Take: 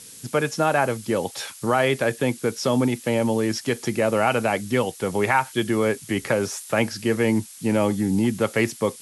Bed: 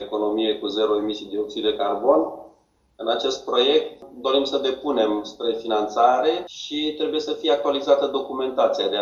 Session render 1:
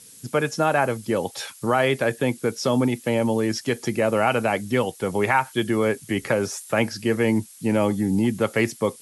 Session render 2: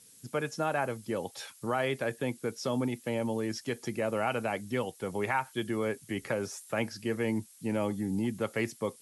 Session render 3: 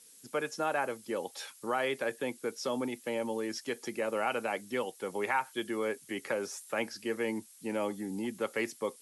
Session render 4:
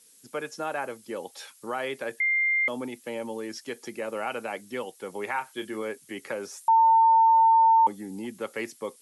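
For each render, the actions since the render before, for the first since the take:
denoiser 6 dB, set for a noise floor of -43 dBFS
gain -10 dB
HPF 290 Hz 12 dB/oct; notch 670 Hz, Q 12
2.2–2.68 bleep 2100 Hz -21 dBFS; 5.33–5.82 doubler 28 ms -10 dB; 6.68–7.87 bleep 902 Hz -15 dBFS

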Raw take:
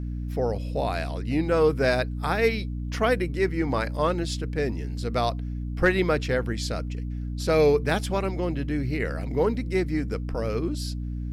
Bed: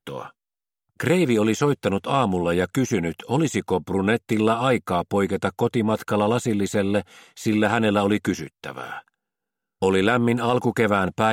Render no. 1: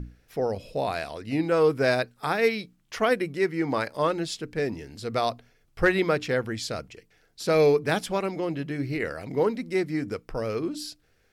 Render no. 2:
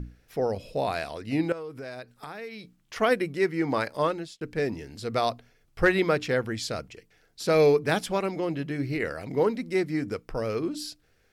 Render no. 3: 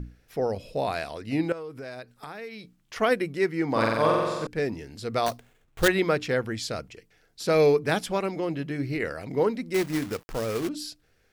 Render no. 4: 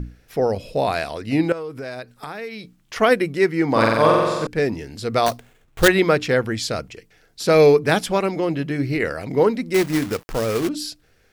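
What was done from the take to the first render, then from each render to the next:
notches 60/120/180/240/300 Hz
1.52–2.96 compressor 5:1, threshold -37 dBFS; 4.01–4.41 fade out
3.71–4.47 flutter echo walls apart 7.7 m, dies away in 1.4 s; 5.26–5.88 sample-rate reducer 5100 Hz, jitter 20%; 9.74–10.69 companded quantiser 4-bit
gain +7 dB

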